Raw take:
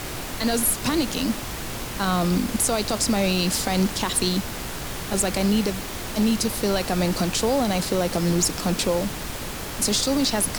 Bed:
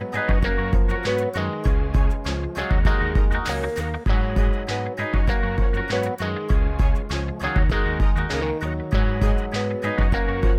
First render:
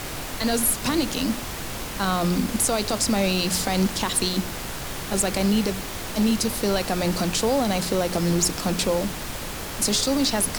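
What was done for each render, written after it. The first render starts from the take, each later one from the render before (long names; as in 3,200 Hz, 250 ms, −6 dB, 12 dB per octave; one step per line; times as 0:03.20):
hum removal 60 Hz, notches 7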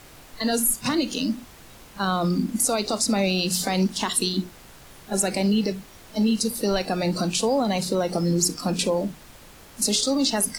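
noise reduction from a noise print 15 dB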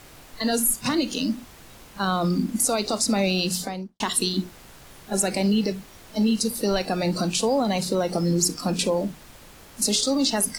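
0:03.44–0:04.00: fade out and dull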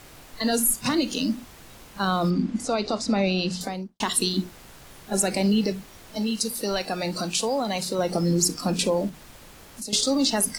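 0:02.30–0:03.61: high-frequency loss of the air 120 metres
0:06.17–0:07.99: low-shelf EQ 490 Hz −7 dB
0:09.09–0:09.93: downward compressor 2.5 to 1, threshold −37 dBFS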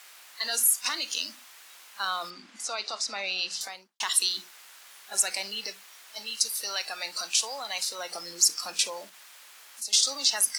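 high-pass filter 1,300 Hz 12 dB per octave
dynamic equaliser 5,800 Hz, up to +5 dB, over −44 dBFS, Q 3.7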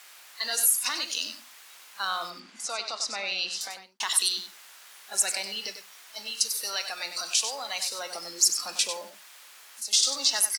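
single-tap delay 96 ms −9 dB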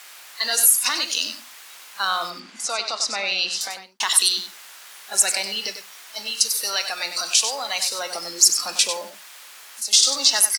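level +7 dB
brickwall limiter −3 dBFS, peak gain reduction 1 dB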